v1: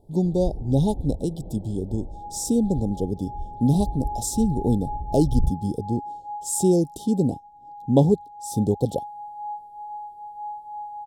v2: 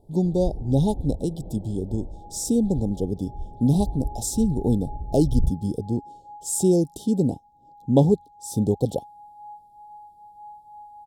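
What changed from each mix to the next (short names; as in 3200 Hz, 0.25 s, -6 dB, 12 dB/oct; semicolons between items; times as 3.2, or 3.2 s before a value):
second sound -9.0 dB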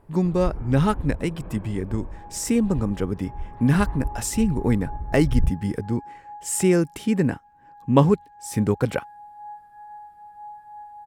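master: remove Chebyshev band-stop 810–3500 Hz, order 4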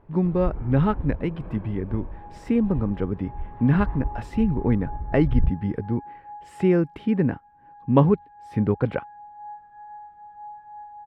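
speech: add air absorption 410 m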